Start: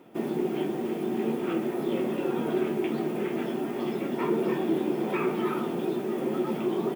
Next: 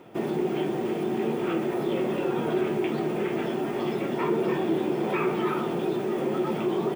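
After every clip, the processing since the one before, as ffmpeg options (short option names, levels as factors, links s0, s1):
-filter_complex "[0:a]equalizer=f=100:t=o:w=0.67:g=6,equalizer=f=250:t=o:w=0.67:g=-6,equalizer=f=16000:t=o:w=0.67:g=-11,asplit=2[s0][s1];[s1]alimiter=level_in=1.58:limit=0.0631:level=0:latency=1,volume=0.631,volume=0.891[s2];[s0][s2]amix=inputs=2:normalize=0"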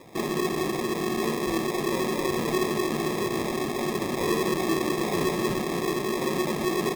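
-af "acrusher=samples=30:mix=1:aa=0.000001"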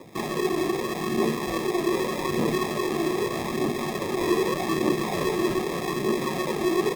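-filter_complex "[0:a]acrossover=split=110|1600|4600[s0][s1][s2][s3];[s1]aphaser=in_gain=1:out_gain=1:delay=3.2:decay=0.47:speed=0.82:type=triangular[s4];[s3]asoftclip=type=tanh:threshold=0.0316[s5];[s0][s4][s2][s5]amix=inputs=4:normalize=0"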